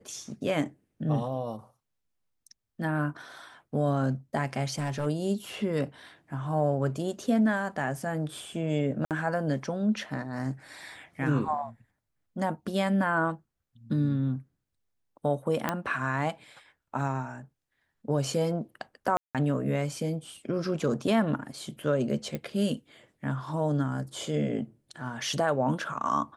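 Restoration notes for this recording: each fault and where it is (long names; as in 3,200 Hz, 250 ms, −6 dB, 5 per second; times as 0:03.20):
0:04.64–0:05.07: clipping −25.5 dBFS
0:09.05–0:09.11: drop-out 58 ms
0:15.69: click −12 dBFS
0:19.17–0:19.35: drop-out 177 ms
0:22.35: click −20 dBFS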